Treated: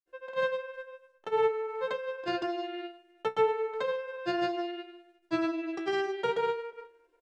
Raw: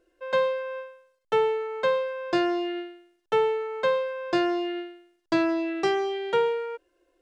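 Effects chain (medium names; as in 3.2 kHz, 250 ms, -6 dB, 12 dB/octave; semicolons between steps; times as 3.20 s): granulator, pitch spread up and down by 0 st; feedback comb 63 Hz, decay 0.16 s, harmonics all, mix 80%; speakerphone echo 360 ms, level -24 dB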